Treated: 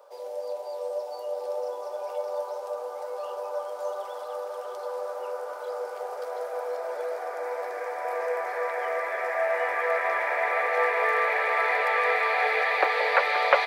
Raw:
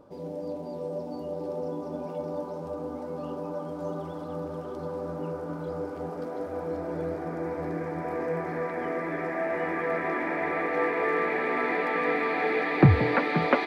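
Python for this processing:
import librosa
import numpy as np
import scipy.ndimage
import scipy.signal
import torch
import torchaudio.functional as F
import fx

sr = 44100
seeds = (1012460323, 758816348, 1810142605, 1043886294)

y = scipy.signal.sosfilt(scipy.signal.butter(8, 490.0, 'highpass', fs=sr, output='sos'), x)
y = fx.high_shelf(y, sr, hz=5100.0, db=8.0)
y = y * librosa.db_to_amplitude(4.0)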